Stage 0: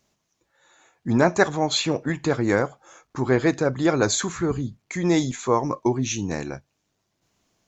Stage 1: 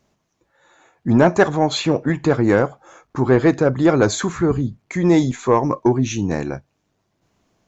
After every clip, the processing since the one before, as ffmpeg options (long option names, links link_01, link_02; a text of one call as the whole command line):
ffmpeg -i in.wav -af "highshelf=frequency=2500:gain=-10,acontrast=74" out.wav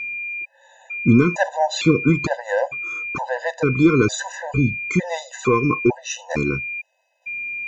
ffmpeg -i in.wav -af "alimiter=limit=-10.5dB:level=0:latency=1:release=372,aeval=exprs='val(0)+0.0282*sin(2*PI*2400*n/s)':channel_layout=same,afftfilt=real='re*gt(sin(2*PI*1.1*pts/sr)*(1-2*mod(floor(b*sr/1024/510),2)),0)':imag='im*gt(sin(2*PI*1.1*pts/sr)*(1-2*mod(floor(b*sr/1024/510),2)),0)':win_size=1024:overlap=0.75,volume=5.5dB" out.wav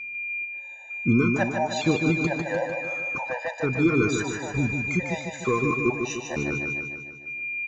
ffmpeg -i in.wav -af "aecho=1:1:150|300|450|600|750|900|1050|1200:0.531|0.308|0.179|0.104|0.0601|0.0348|0.0202|0.0117,volume=-7dB" out.wav